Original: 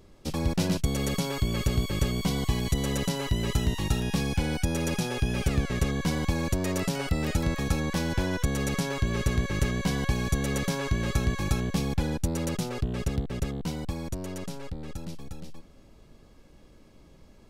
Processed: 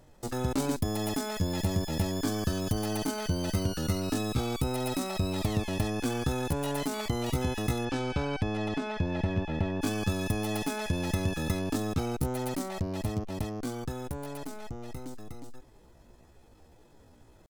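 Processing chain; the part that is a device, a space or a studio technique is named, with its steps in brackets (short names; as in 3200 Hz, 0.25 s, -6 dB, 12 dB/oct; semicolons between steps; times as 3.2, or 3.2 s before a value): chipmunk voice (pitch shift +7.5 st); 7.84–9.81 LPF 5200 Hz -> 2000 Hz 12 dB/oct; gain -3 dB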